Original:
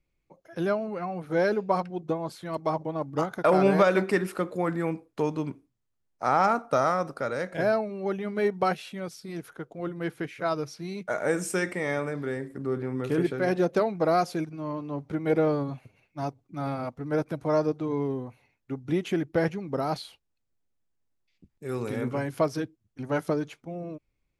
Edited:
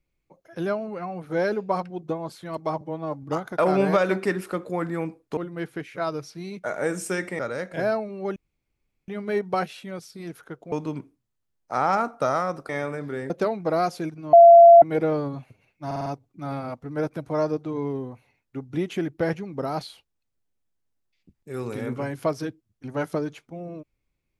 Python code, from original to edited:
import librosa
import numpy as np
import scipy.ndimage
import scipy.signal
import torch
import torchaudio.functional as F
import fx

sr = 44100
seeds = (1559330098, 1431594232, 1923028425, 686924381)

y = fx.edit(x, sr, fx.stretch_span(start_s=2.81, length_s=0.28, factor=1.5),
    fx.swap(start_s=5.23, length_s=1.97, other_s=9.81, other_length_s=2.02),
    fx.insert_room_tone(at_s=8.17, length_s=0.72),
    fx.cut(start_s=12.44, length_s=1.21),
    fx.bleep(start_s=14.68, length_s=0.49, hz=682.0, db=-6.0),
    fx.stutter(start_s=16.21, slice_s=0.05, count=5), tone=tone)